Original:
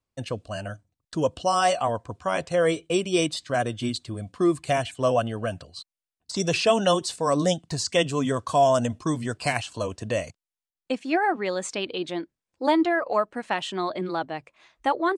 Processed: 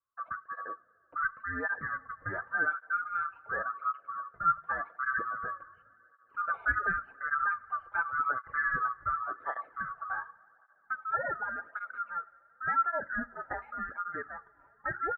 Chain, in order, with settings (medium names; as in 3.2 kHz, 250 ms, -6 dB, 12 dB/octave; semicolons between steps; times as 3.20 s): split-band scrambler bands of 1 kHz; steep low-pass 1.5 kHz 36 dB/octave; peaking EQ 140 Hz -8.5 dB 2.7 oct; two-slope reverb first 0.33 s, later 4.1 s, from -18 dB, DRR 14 dB; cancelling through-zero flanger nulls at 0.89 Hz, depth 4.8 ms; trim -2 dB